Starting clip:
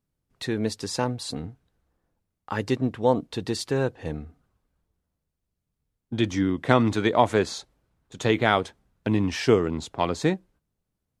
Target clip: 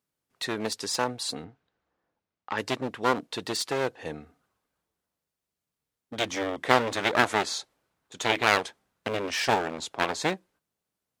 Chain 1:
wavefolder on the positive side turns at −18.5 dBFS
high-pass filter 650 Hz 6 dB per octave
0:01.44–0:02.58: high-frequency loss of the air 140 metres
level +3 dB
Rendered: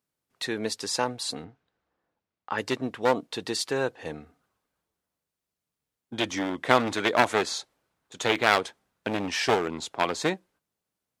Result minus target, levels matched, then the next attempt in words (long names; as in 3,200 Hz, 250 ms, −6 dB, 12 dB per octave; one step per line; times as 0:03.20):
wavefolder on the positive side: distortion −9 dB
wavefolder on the positive side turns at −26 dBFS
high-pass filter 650 Hz 6 dB per octave
0:01.44–0:02.58: high-frequency loss of the air 140 metres
level +3 dB